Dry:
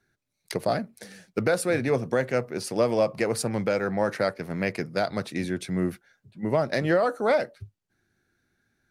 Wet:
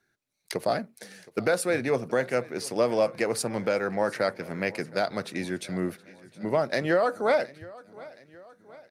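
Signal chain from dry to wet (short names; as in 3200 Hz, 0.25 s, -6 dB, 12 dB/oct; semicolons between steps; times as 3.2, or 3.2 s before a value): low shelf 150 Hz -11 dB; on a send: feedback echo 0.719 s, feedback 54%, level -21 dB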